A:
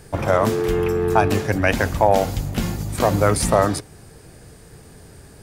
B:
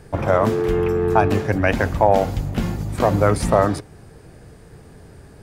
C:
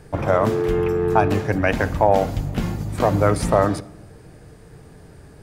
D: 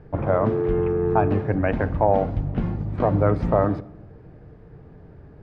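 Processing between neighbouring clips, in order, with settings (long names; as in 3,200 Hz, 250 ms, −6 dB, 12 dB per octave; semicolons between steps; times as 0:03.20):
high-shelf EQ 3,500 Hz −10.5 dB; level +1 dB
rectangular room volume 3,500 cubic metres, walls furnished, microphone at 0.47 metres; level −1 dB
head-to-tape spacing loss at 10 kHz 44 dB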